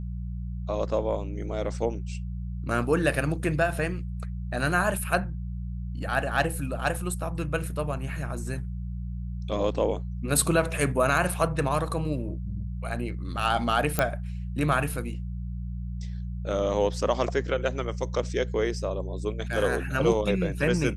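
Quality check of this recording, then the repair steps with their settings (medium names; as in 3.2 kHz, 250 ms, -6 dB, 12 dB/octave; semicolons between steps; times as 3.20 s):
hum 60 Hz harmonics 3 -33 dBFS
13.99 s: pop -8 dBFS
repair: de-click; de-hum 60 Hz, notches 3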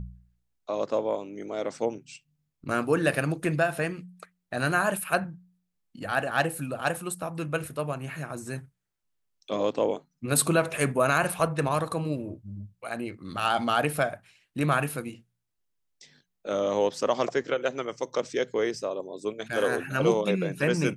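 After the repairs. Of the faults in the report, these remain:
13.99 s: pop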